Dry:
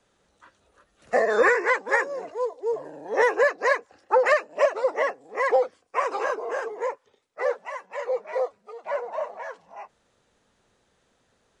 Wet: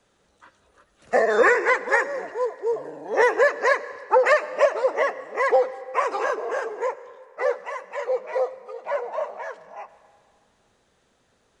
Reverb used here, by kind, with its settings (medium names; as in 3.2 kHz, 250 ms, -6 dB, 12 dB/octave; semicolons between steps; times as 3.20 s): algorithmic reverb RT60 2.1 s, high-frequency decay 0.8×, pre-delay 55 ms, DRR 15.5 dB; trim +2 dB